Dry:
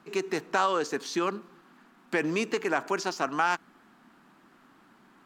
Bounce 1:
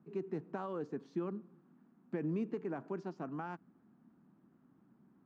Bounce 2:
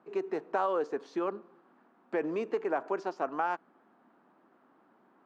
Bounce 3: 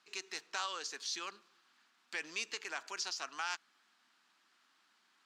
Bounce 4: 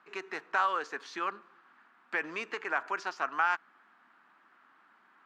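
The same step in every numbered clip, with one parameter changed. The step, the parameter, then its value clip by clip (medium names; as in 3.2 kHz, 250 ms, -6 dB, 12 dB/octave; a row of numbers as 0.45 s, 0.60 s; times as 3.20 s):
band-pass filter, frequency: 140 Hz, 550 Hz, 4.9 kHz, 1.5 kHz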